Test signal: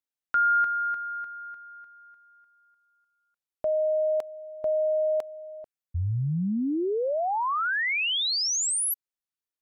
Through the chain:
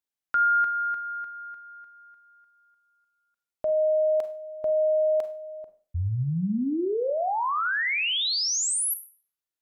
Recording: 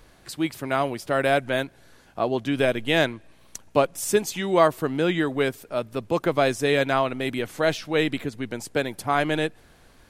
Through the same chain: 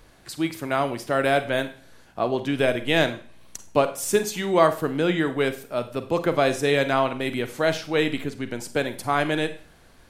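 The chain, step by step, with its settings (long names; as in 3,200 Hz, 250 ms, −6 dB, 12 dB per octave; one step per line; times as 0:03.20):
four-comb reverb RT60 0.41 s, combs from 33 ms, DRR 10 dB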